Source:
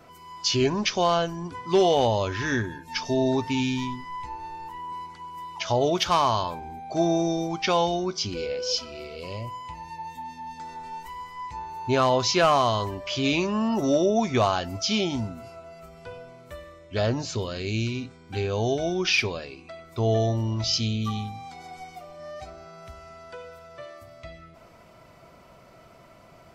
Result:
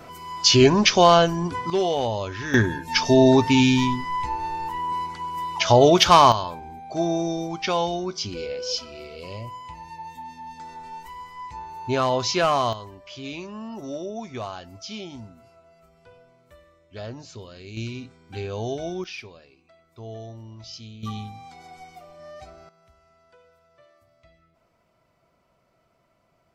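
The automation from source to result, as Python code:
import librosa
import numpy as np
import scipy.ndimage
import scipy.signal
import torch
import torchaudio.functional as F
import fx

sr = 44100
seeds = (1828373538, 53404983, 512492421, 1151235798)

y = fx.gain(x, sr, db=fx.steps((0.0, 8.0), (1.7, -3.0), (2.54, 8.5), (6.32, -1.0), (12.73, -11.0), (17.77, -4.0), (19.04, -15.0), (21.03, -3.0), (22.69, -15.0)))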